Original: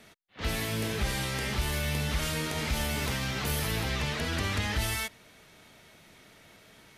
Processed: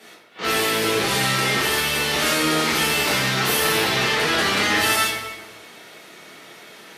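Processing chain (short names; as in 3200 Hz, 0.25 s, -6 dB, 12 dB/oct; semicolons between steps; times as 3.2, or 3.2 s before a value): HPF 300 Hz 12 dB/oct; echo with dull and thin repeats by turns 0.121 s, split 1400 Hz, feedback 51%, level -12 dB; reverb RT60 1.1 s, pre-delay 5 ms, DRR -8.5 dB; gain +4.5 dB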